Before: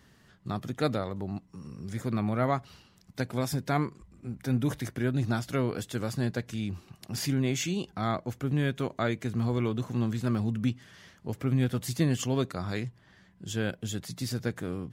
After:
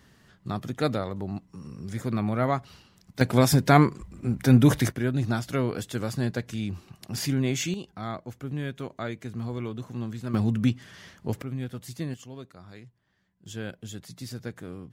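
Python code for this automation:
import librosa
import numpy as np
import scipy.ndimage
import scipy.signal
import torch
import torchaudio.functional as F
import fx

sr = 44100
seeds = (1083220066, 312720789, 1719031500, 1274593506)

y = fx.gain(x, sr, db=fx.steps((0.0, 2.0), (3.21, 10.5), (4.92, 2.0), (7.74, -4.5), (10.34, 5.0), (11.42, -7.0), (12.14, -14.0), (13.46, -5.0)))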